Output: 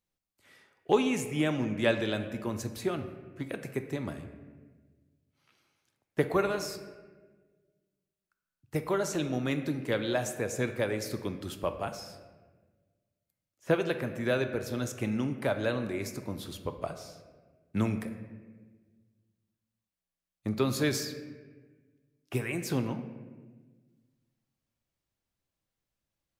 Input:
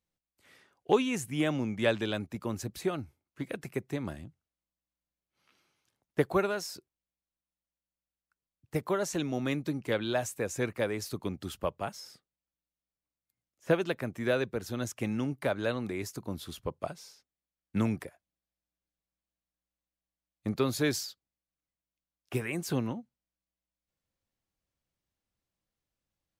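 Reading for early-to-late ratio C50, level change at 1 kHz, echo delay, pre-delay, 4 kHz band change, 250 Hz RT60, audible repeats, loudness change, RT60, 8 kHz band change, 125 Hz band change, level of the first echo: 9.5 dB, +0.5 dB, no echo audible, 3 ms, +0.5 dB, 1.8 s, no echo audible, +1.0 dB, 1.4 s, +0.5 dB, +1.5 dB, no echo audible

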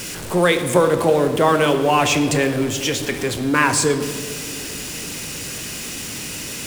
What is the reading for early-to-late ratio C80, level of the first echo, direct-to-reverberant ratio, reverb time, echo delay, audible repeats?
10.5 dB, no echo audible, 7.0 dB, 2.4 s, no echo audible, no echo audible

